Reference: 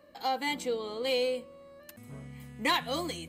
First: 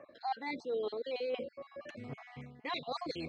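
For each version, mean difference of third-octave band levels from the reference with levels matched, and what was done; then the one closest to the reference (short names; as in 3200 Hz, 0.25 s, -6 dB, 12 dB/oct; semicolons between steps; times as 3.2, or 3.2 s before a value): 9.0 dB: random spectral dropouts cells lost 38%; reverse; compressor 12:1, threshold -43 dBFS, peak gain reduction 19.5 dB; reverse; speaker cabinet 110–4500 Hz, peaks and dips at 190 Hz -6 dB, 410 Hz +6 dB, 710 Hz +7 dB, 3100 Hz -3 dB; gain +6.5 dB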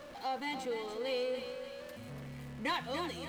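7.0 dB: zero-crossing step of -37.5 dBFS; LPF 3600 Hz 6 dB/oct; thinning echo 0.29 s, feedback 48%, high-pass 420 Hz, level -7.5 dB; gain -7 dB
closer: second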